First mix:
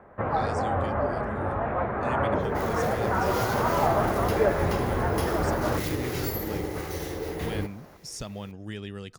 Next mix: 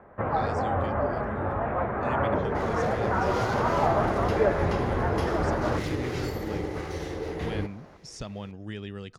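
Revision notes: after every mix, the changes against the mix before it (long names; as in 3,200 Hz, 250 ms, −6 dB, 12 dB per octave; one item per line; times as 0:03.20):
master: add high-frequency loss of the air 78 metres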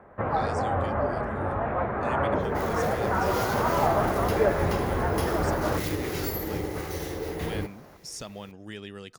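speech: add low-shelf EQ 150 Hz −11.5 dB
master: remove high-frequency loss of the air 78 metres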